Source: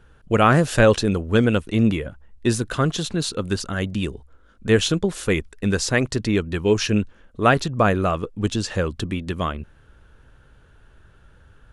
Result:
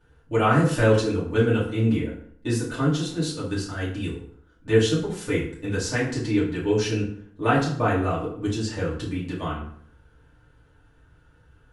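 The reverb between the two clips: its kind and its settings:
feedback delay network reverb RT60 0.6 s, low-frequency decay 1.1×, high-frequency decay 0.7×, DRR −8.5 dB
level −13.5 dB

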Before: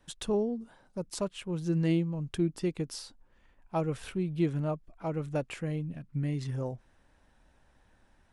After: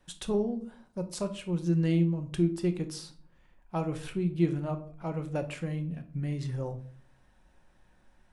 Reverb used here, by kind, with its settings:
rectangular room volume 460 cubic metres, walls furnished, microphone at 0.97 metres
level −1 dB

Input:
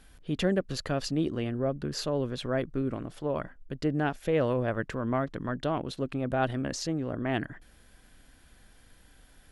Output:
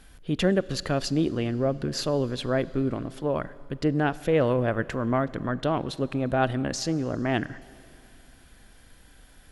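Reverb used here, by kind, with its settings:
four-comb reverb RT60 2.8 s, combs from 33 ms, DRR 18.5 dB
level +4 dB

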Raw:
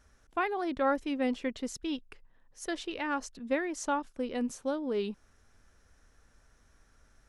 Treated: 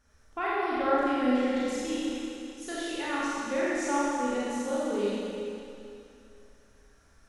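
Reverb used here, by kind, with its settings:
four-comb reverb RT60 2.7 s, combs from 28 ms, DRR −8.5 dB
level −5 dB

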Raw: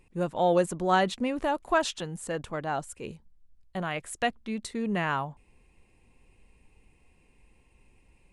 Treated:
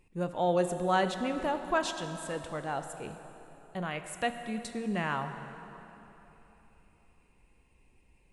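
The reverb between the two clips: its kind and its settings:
dense smooth reverb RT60 3.5 s, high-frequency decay 0.75×, DRR 7.5 dB
level −4 dB

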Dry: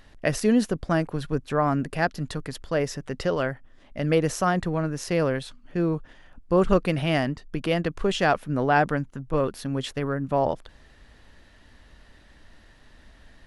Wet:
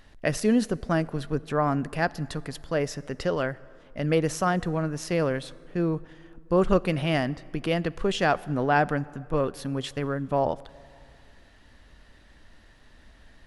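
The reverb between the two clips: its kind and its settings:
dense smooth reverb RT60 2.5 s, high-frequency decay 0.6×, DRR 20 dB
level −1.5 dB

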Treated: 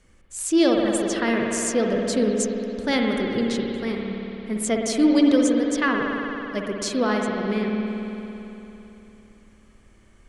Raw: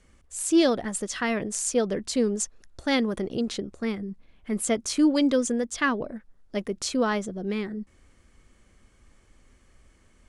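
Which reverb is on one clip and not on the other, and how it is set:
spring reverb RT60 3.4 s, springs 56 ms, chirp 45 ms, DRR 0 dB
level +1 dB

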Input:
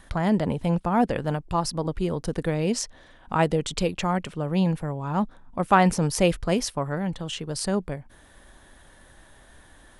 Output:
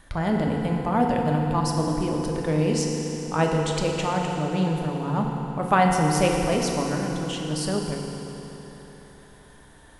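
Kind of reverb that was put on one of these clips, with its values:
feedback delay network reverb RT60 3.9 s, high-frequency decay 0.8×, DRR 0 dB
level −2 dB

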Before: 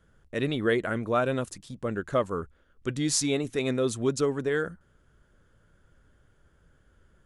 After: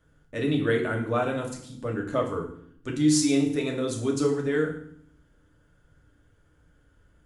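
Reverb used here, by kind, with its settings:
feedback delay network reverb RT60 0.62 s, low-frequency decay 1.55×, high-frequency decay 0.95×, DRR 0 dB
level −3 dB

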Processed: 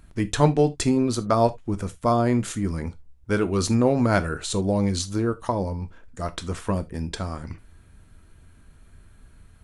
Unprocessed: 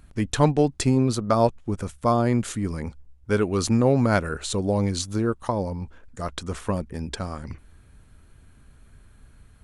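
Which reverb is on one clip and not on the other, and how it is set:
reverb whose tail is shaped and stops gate 100 ms falling, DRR 10 dB

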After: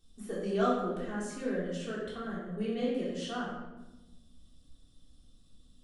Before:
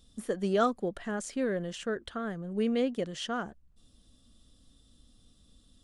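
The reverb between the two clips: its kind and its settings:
rectangular room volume 480 cubic metres, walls mixed, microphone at 3.5 metres
level −11.5 dB

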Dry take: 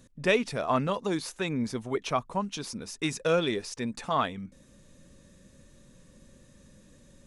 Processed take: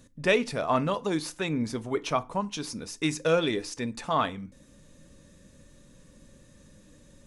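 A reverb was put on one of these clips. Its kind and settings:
feedback delay network reverb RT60 0.32 s, low-frequency decay 1.25×, high-frequency decay 0.8×, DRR 13 dB
level +1 dB

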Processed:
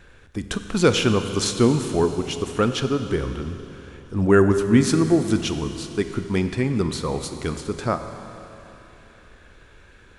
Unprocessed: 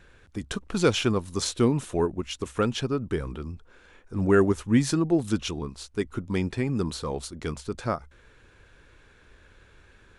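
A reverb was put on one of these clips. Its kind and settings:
four-comb reverb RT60 3.2 s, combs from 31 ms, DRR 8 dB
level +4.5 dB

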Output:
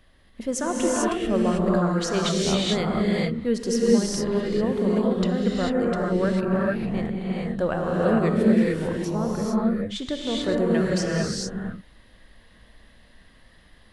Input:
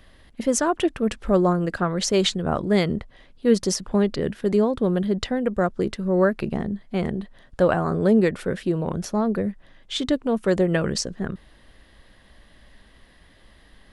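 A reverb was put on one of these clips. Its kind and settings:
reverb whose tail is shaped and stops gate 470 ms rising, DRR −4.5 dB
level −6.5 dB

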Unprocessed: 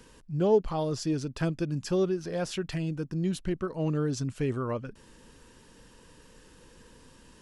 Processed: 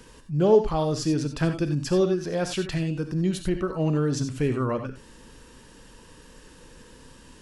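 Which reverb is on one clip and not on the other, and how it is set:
reverb whose tail is shaped and stops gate 110 ms rising, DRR 7 dB
level +4.5 dB

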